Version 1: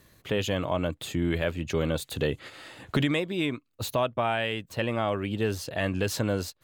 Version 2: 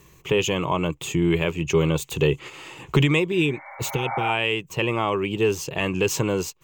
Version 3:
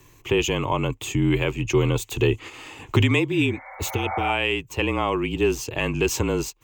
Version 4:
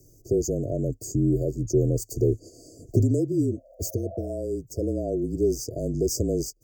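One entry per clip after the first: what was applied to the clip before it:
healed spectral selection 0:03.35–0:04.27, 540–2,300 Hz both; EQ curve with evenly spaced ripples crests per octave 0.73, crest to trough 11 dB; level +4.5 dB
frequency shifter −33 Hz
linear-phase brick-wall band-stop 710–4,500 Hz; level −1.5 dB

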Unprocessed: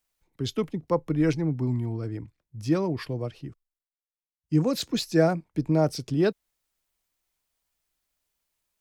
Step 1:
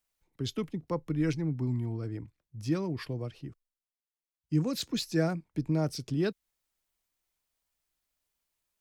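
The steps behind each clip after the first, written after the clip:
dynamic equaliser 660 Hz, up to −7 dB, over −36 dBFS, Q 0.81
level −3.5 dB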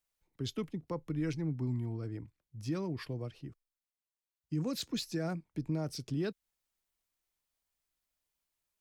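brickwall limiter −22.5 dBFS, peak gain reduction 7.5 dB
level −3.5 dB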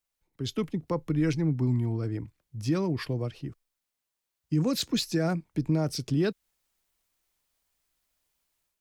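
automatic gain control gain up to 8.5 dB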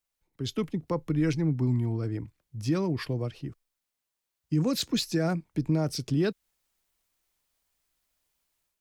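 no processing that can be heard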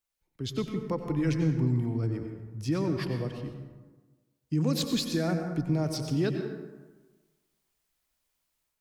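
dense smooth reverb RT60 1.3 s, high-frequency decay 0.5×, pre-delay 80 ms, DRR 5 dB
level −2 dB

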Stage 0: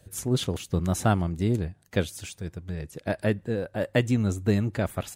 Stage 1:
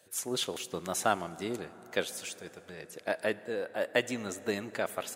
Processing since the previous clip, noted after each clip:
Bessel high-pass filter 560 Hz, order 2
dense smooth reverb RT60 5 s, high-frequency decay 0.4×, DRR 16 dB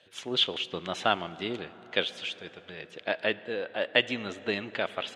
low-pass with resonance 3,200 Hz, resonance Q 3.6
level +1 dB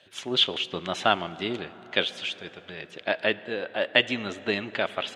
notch filter 480 Hz, Q 14
level +3.5 dB

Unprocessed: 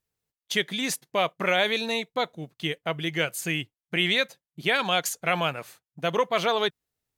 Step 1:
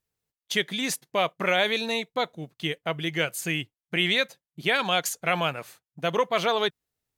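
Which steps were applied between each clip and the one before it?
no processing that can be heard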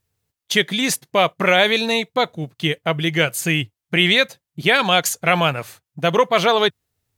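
parametric band 95 Hz +11 dB 0.8 octaves
level +8 dB

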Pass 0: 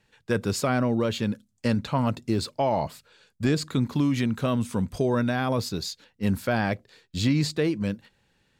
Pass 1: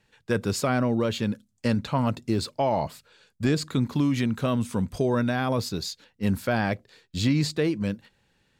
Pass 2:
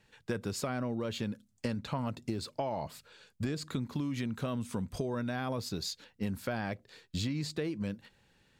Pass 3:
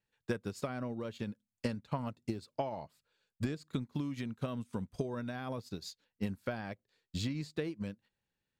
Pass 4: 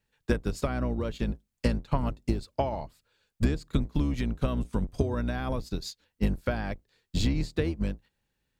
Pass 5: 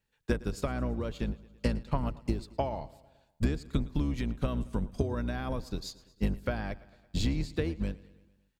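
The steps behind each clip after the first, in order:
no processing that can be heard
downward compressor 6 to 1, threshold −32 dBFS, peak gain reduction 13 dB
expander for the loud parts 2.5 to 1, over −45 dBFS; level +2 dB
sub-octave generator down 2 octaves, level +2 dB; level +7 dB
repeating echo 112 ms, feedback 60%, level −20.5 dB; level −3 dB

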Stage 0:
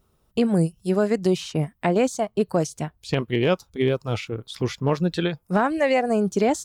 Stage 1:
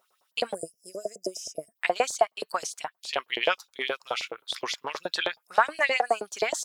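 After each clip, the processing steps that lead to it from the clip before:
auto-filter high-pass saw up 9.5 Hz 600–5,300 Hz
gain on a spectral selection 0:00.54–0:01.76, 710–4,900 Hz −27 dB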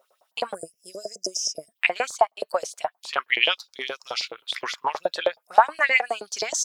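in parallel at −1.5 dB: downward compressor, threshold −34 dBFS, peak gain reduction 18 dB
on the sum: auto-filter bell 0.38 Hz 550–6,000 Hz +15 dB
level −5 dB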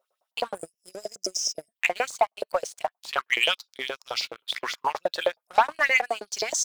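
leveller curve on the samples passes 2
level −8 dB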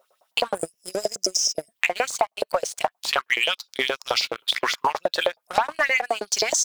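in parallel at −1.5 dB: brickwall limiter −17.5 dBFS, peak gain reduction 8 dB
on the sum: downward compressor 5 to 1, threshold −27 dBFS, peak gain reduction 14 dB
level +7.5 dB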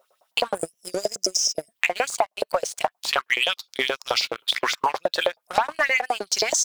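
wow of a warped record 45 rpm, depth 100 cents

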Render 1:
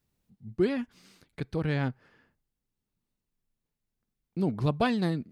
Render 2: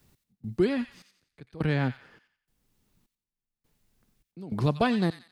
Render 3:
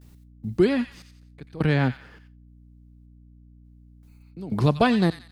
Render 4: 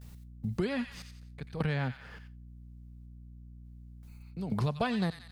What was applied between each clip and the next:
gate pattern "x..xxxx....xxx" 103 BPM −24 dB; delay with a high-pass on its return 89 ms, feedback 32%, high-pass 1,800 Hz, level −9 dB; multiband upward and downward compressor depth 40%; level +2.5 dB
healed spectral selection 0:04.10–0:04.31, 820–5,900 Hz after; noise gate with hold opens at −57 dBFS; mains hum 60 Hz, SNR 24 dB; level +5 dB
parametric band 320 Hz −10.5 dB 0.55 octaves; downward compressor 3 to 1, threshold −33 dBFS, peak gain reduction 13 dB; level +2 dB

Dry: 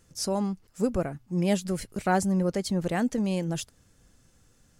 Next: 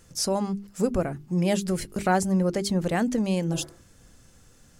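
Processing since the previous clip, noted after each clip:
healed spectral selection 0:03.55–0:03.83, 220–2,400 Hz both
mains-hum notches 50/100/150/200/250/300/350/400 Hz
in parallel at +1.5 dB: downward compressor, threshold −34 dBFS, peak gain reduction 14.5 dB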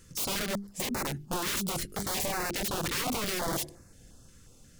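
wrap-around overflow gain 25.5 dB
notch on a step sequencer 5.6 Hz 730–3,200 Hz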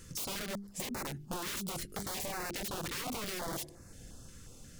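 downward compressor 2.5 to 1, threshold −45 dBFS, peak gain reduction 11 dB
level +3.5 dB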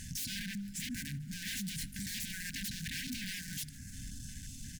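tube saturation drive 45 dB, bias 0.3
brick-wall band-stop 280–1,500 Hz
echo with shifted repeats 151 ms, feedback 61%, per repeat −47 Hz, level −22 dB
level +9 dB

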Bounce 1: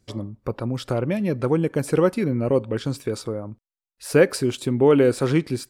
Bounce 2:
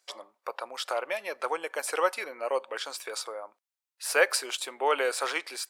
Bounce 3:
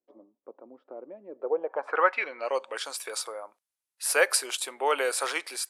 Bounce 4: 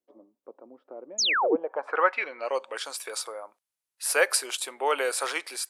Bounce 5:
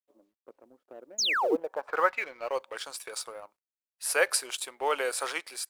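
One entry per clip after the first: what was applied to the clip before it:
high-pass filter 680 Hz 24 dB per octave; level +2 dB
low-pass filter sweep 280 Hz → 11,000 Hz, 0:01.29–0:02.82
sound drawn into the spectrogram fall, 0:01.18–0:01.56, 260–7,200 Hz −24 dBFS
mu-law and A-law mismatch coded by A; level −2 dB

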